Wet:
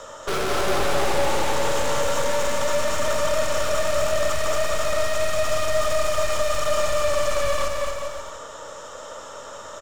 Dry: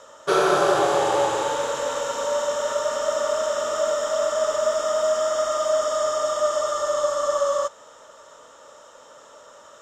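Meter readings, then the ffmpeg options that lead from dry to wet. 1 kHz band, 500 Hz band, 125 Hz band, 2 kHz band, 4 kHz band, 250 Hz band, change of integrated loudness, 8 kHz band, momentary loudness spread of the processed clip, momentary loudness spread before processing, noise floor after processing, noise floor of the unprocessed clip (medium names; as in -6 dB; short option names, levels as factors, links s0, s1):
-1.5 dB, -2.0 dB, no reading, +4.0 dB, +3.0 dB, -0.5 dB, -1.0 dB, +2.0 dB, 15 LU, 5 LU, -39 dBFS, -48 dBFS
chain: -filter_complex "[0:a]aeval=exprs='(tanh(44.7*val(0)+0.35)-tanh(0.35))/44.7':c=same,aecho=1:1:230|402.5|531.9|628.9|701.7:0.631|0.398|0.251|0.158|0.1,acrossover=split=130[s0][s1];[s0]acontrast=84[s2];[s2][s1]amix=inputs=2:normalize=0,volume=2.66"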